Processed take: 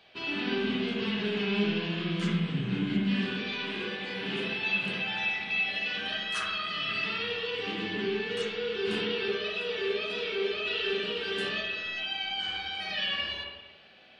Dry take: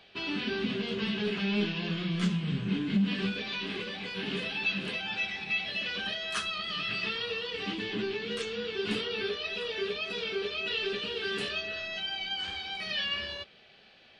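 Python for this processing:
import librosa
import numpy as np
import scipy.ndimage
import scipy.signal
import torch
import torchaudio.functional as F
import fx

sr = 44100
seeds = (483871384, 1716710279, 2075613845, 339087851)

y = fx.low_shelf(x, sr, hz=130.0, db=-5.5)
y = fx.rev_spring(y, sr, rt60_s=1.0, pass_ms=(48, 56), chirp_ms=75, drr_db=-3.0)
y = F.gain(torch.from_numpy(y), -2.5).numpy()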